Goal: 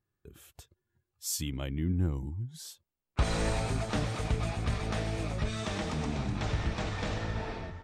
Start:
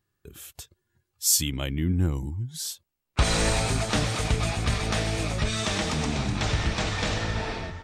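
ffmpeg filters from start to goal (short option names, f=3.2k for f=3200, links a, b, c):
-af "highshelf=f=2.1k:g=-8.5,volume=-5dB"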